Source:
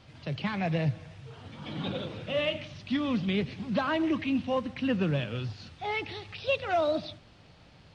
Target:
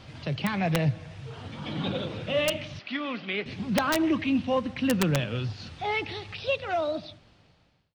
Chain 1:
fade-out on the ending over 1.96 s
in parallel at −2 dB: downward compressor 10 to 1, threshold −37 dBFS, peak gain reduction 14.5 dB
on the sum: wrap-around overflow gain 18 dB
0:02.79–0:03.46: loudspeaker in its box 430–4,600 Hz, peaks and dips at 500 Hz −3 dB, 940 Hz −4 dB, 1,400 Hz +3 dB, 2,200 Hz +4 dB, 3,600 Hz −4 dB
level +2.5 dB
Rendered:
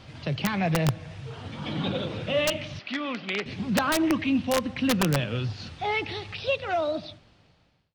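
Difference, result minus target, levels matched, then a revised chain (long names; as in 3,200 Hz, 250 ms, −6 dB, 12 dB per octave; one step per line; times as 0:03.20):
downward compressor: peak gain reduction −8.5 dB
fade-out on the ending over 1.96 s
in parallel at −2 dB: downward compressor 10 to 1, threshold −46.5 dBFS, peak gain reduction 23 dB
on the sum: wrap-around overflow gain 18 dB
0:02.79–0:03.46: loudspeaker in its box 430–4,600 Hz, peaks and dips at 500 Hz −3 dB, 940 Hz −4 dB, 1,400 Hz +3 dB, 2,200 Hz +4 dB, 3,600 Hz −4 dB
level +2.5 dB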